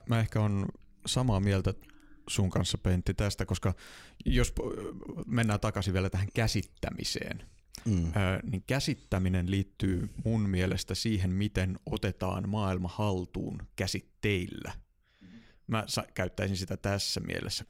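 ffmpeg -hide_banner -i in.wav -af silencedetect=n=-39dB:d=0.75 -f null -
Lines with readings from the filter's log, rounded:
silence_start: 14.77
silence_end: 15.69 | silence_duration: 0.92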